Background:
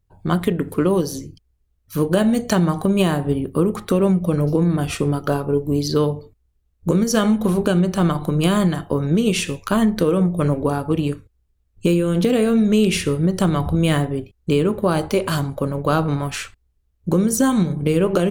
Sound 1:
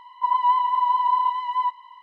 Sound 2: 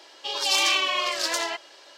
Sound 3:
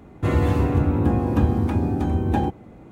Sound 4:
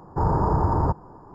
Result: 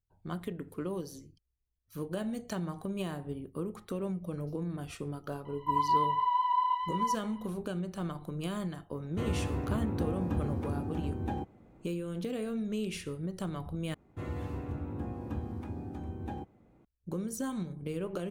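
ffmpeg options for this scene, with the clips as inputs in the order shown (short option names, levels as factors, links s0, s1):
-filter_complex "[3:a]asplit=2[s0][s1];[0:a]volume=0.119[s2];[1:a]equalizer=f=2700:w=1.5:g=3[s3];[s2]asplit=2[s4][s5];[s4]atrim=end=13.944[s6];[s1]atrim=end=2.91,asetpts=PTS-STARTPTS,volume=0.126[s7];[s5]atrim=start=16.846[s8];[s3]atrim=end=2.02,asetpts=PTS-STARTPTS,volume=0.398,afade=t=in:d=0.004:c=hsin,afade=t=out:st=2.016:d=0.004:c=hsin,adelay=240345S[s9];[s0]atrim=end=2.91,asetpts=PTS-STARTPTS,volume=0.211,afade=t=in:d=0.004:c=hsin,afade=t=out:st=2.906:d=0.004:c=hsin,adelay=8940[s10];[s6][s7]acrossfade=d=0.004:c1=hsin:c2=hsin[s11];[s11][s8]acrossfade=d=0.004:c1=hsin:c2=hsin[s12];[s12][s9][s10]amix=inputs=3:normalize=0"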